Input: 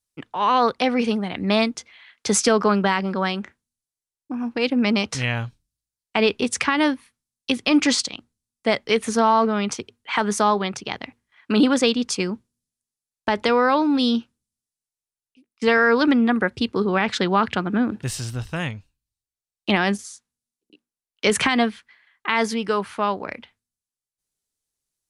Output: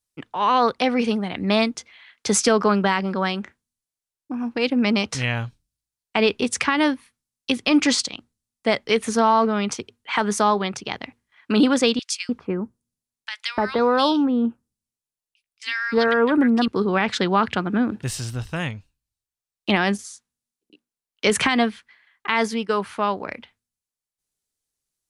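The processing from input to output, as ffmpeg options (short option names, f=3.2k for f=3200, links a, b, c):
-filter_complex "[0:a]asettb=1/sr,asplit=3[a][b][c];[a]atrim=end=11.994[d];[b]atrim=start=11.99:end=16.68,asetpts=PTS-STARTPTS,afade=t=in:d=0.004:c=qsin,afade=t=out:st=4.686:d=0.004:c=qsin,acrossover=split=1700[e][f];[e]adelay=300[g];[g][f]amix=inputs=2:normalize=0,atrim=end_sample=206829[h];[c]atrim=start=16.676[i];[d][h]acrossfade=d=0.004:c1=hsin:c2=qsin[j];[j][i]acrossfade=d=0.004:c1=qsin:c2=hsin,asettb=1/sr,asplit=3[k][l][m];[k]atrim=end=22.274[n];[l]atrim=start=22.27:end=22.81,asetpts=PTS-STARTPTS,afade=t=in:d=0.004:c=qsin,afade=t=out:st=0.536:d=0.004:c=qsin,agate=range=-33dB:threshold=-26dB:ratio=3:release=100:detection=peak[o];[m]atrim=start=22.806[p];[n][o]acrossfade=d=0.004:c1=hsin:c2=qsin[q];[q][p]acrossfade=d=0.004:c1=qsin:c2=hsin"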